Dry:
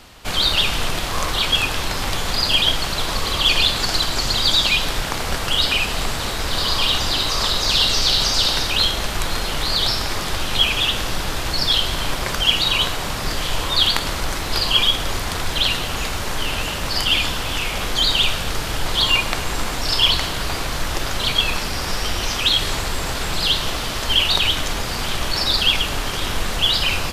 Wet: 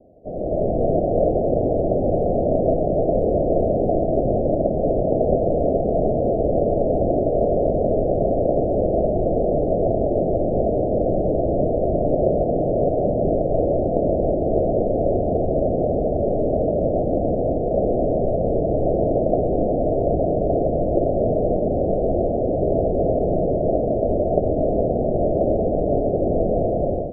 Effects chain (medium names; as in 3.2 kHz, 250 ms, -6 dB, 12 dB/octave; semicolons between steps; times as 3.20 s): steep low-pass 680 Hz 96 dB/octave; tilt EQ +4.5 dB/octave; level rider gain up to 12 dB; trim +6.5 dB